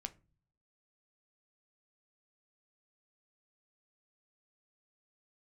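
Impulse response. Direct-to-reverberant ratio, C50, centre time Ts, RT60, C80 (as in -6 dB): 8.5 dB, 20.5 dB, 4 ms, no single decay rate, 27.0 dB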